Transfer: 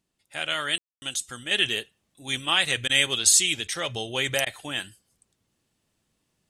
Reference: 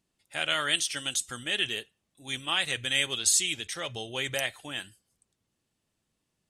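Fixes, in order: room tone fill 0.78–1.02; interpolate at 2.88/4.45, 13 ms; gain 0 dB, from 1.51 s -5.5 dB

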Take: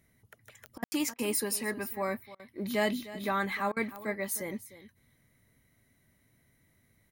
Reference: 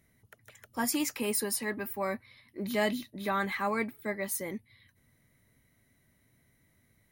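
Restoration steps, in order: de-click; room tone fill 0.84–0.92; interpolate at 0.78/1.14/2.35/3.72, 44 ms; inverse comb 0.305 s -16 dB

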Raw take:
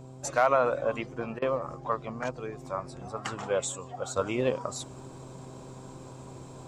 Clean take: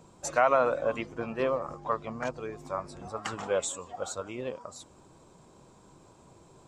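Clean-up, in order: clip repair -12 dBFS; de-hum 130 Hz, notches 6; interpolate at 1.39, 29 ms; gain correction -8.5 dB, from 4.16

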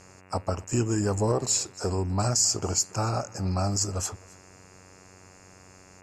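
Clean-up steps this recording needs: de-hum 93.2 Hz, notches 30; inverse comb 0.267 s -23.5 dB

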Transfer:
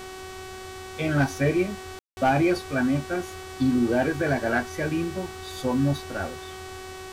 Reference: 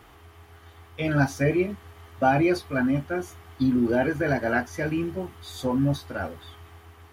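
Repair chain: clip repair -14.5 dBFS; de-hum 375.8 Hz, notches 25; room tone fill 1.99–2.17; denoiser 11 dB, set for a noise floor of -39 dBFS

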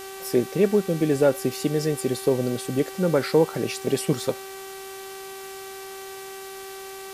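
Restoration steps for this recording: de-hum 386.9 Hz, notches 25; denoiser 29 dB, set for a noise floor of -38 dBFS

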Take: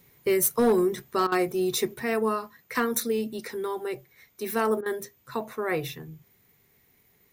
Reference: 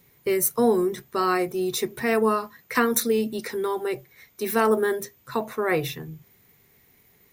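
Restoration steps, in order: clip repair -16 dBFS; interpolate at 1.27/4.81, 48 ms; gain 0 dB, from 1.94 s +4.5 dB

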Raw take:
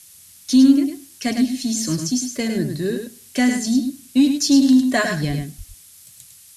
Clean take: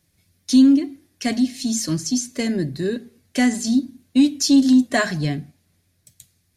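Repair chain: 5.27–5.39 HPF 140 Hz 24 dB/oct; 5.57–5.69 HPF 140 Hz 24 dB/oct; noise print and reduce 19 dB; inverse comb 0.104 s -6.5 dB

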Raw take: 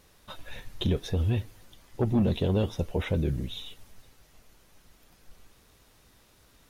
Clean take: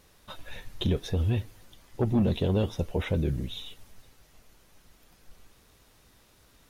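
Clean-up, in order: interpolate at 0.59/5.1, 2.6 ms

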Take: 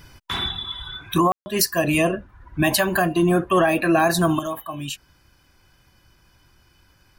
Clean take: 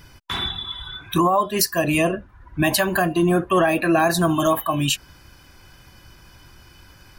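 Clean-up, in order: room tone fill 1.32–1.46; gain correction +9.5 dB, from 4.39

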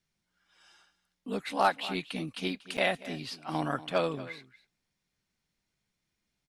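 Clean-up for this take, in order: clip repair -14.5 dBFS; interpolate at 2.77, 7.8 ms; inverse comb 0.237 s -17 dB

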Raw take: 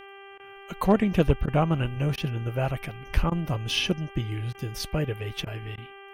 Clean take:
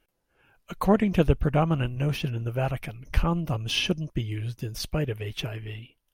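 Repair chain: clip repair -10 dBFS; de-hum 394.8 Hz, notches 8; interpolate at 0.38/1.46/2.16/3.3/4.53/5.45/5.76, 15 ms

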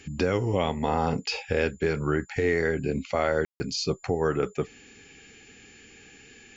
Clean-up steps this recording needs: notch 7100 Hz, Q 30; room tone fill 3.45–3.6

